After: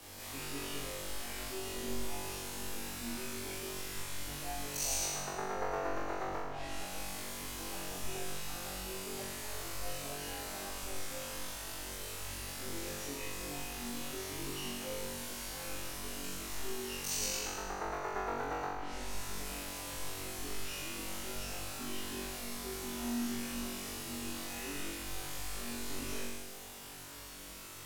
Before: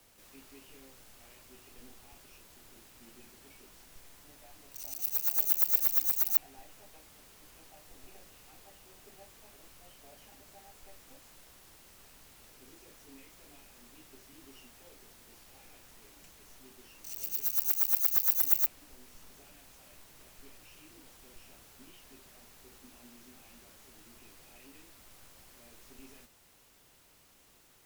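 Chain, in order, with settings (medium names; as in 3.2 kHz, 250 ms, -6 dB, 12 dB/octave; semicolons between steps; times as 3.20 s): low-pass that closes with the level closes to 1.1 kHz, closed at -26.5 dBFS; flutter echo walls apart 3.6 m, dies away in 1.2 s; trim +8.5 dB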